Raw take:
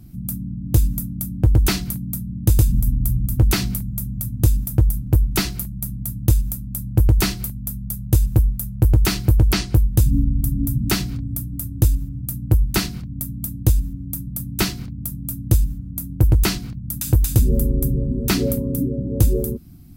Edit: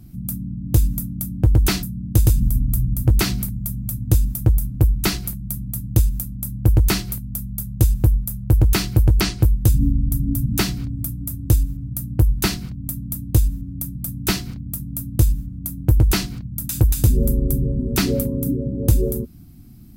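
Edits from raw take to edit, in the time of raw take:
1.83–2.15 s: delete

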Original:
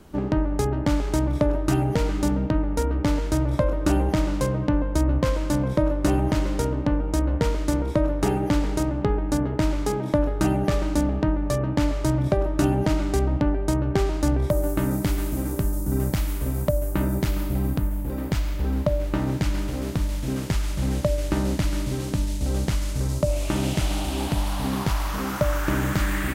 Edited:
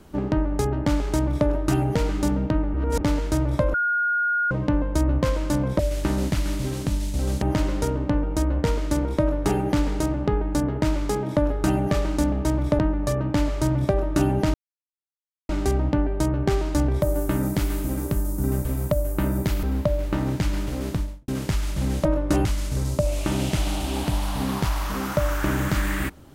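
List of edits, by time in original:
1.14–1.48 s: copy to 11.22 s
2.74–3.01 s: reverse
3.74–4.51 s: bleep 1.43 kHz -19.5 dBFS
5.79–6.19 s: swap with 21.06–22.69 s
12.97 s: insert silence 0.95 s
16.13–16.42 s: delete
17.40–18.64 s: delete
19.91–20.29 s: studio fade out

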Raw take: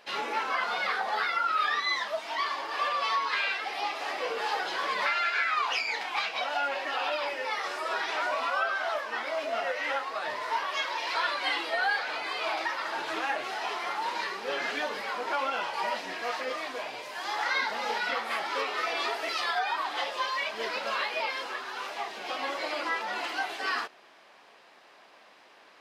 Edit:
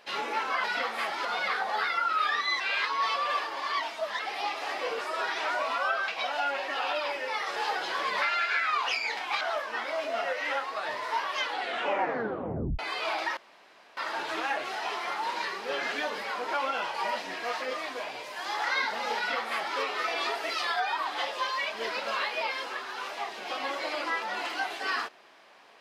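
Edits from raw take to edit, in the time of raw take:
1.99–3.58 s: reverse
4.40–6.25 s: swap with 7.73–8.80 s
10.73 s: tape stop 1.45 s
12.76 s: insert room tone 0.60 s
17.96–18.57 s: copy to 0.64 s

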